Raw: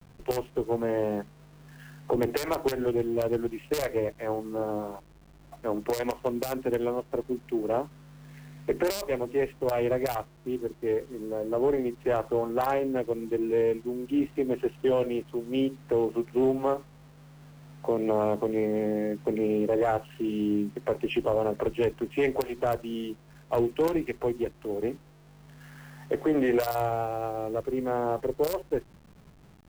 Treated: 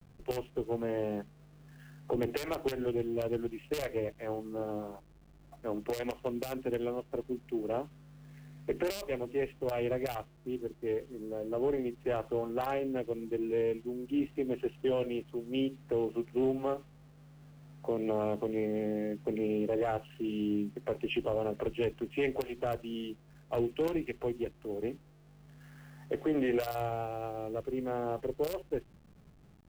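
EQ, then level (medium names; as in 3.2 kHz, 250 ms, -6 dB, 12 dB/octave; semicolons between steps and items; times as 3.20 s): bass shelf 480 Hz +4.5 dB; band-stop 960 Hz, Q 15; dynamic bell 2.8 kHz, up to +7 dB, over -53 dBFS, Q 1.9; -8.5 dB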